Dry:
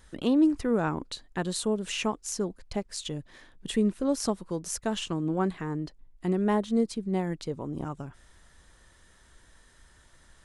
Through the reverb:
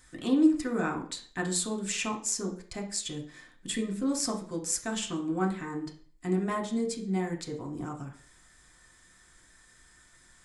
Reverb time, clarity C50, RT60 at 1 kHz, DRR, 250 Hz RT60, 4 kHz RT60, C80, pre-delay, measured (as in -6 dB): 0.45 s, 10.0 dB, 0.45 s, 1.0 dB, 0.40 s, 0.40 s, 14.5 dB, 3 ms